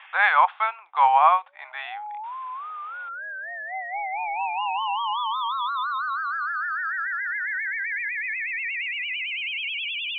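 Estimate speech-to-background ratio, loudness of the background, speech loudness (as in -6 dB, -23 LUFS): 7.5 dB, -27.5 LUFS, -20.0 LUFS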